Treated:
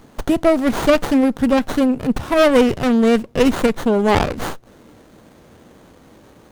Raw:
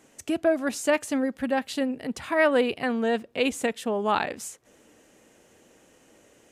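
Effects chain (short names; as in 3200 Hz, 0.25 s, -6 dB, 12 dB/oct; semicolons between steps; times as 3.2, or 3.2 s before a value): tone controls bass +10 dB, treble +10 dB; running maximum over 17 samples; gain +8.5 dB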